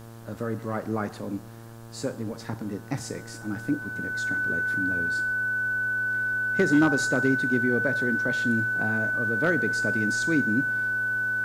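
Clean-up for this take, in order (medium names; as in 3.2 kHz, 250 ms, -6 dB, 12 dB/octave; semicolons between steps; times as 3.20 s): clip repair -13.5 dBFS; de-hum 114.5 Hz, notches 15; band-stop 1.5 kHz, Q 30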